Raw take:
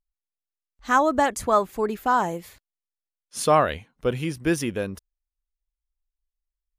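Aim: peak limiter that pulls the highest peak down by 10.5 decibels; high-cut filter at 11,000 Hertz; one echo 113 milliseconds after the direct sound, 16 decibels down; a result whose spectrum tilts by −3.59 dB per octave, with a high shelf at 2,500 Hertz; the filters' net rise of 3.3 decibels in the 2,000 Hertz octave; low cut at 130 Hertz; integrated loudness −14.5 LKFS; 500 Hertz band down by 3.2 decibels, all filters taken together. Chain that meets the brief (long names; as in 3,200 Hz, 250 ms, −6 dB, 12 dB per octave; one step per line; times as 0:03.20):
high-pass filter 130 Hz
low-pass filter 11,000 Hz
parametric band 500 Hz −4.5 dB
parametric band 2,000 Hz +3.5 dB
high-shelf EQ 2,500 Hz +3.5 dB
brickwall limiter −16.5 dBFS
single-tap delay 113 ms −16 dB
level +14 dB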